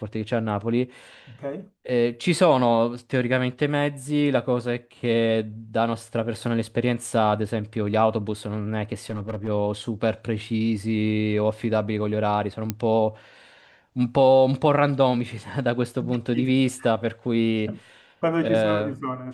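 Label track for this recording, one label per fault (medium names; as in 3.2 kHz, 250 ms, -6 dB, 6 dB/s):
9.100000	9.490000	clipped -23.5 dBFS
12.700000	12.700000	pop -10 dBFS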